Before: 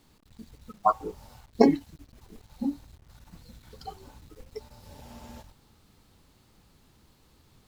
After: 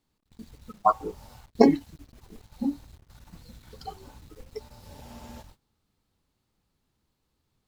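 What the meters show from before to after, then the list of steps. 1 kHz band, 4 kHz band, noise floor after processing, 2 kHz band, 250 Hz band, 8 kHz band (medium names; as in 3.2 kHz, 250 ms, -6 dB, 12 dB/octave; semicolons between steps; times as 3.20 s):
+1.5 dB, +1.5 dB, -77 dBFS, +1.5 dB, +1.5 dB, no reading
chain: gate -53 dBFS, range -17 dB; trim +1.5 dB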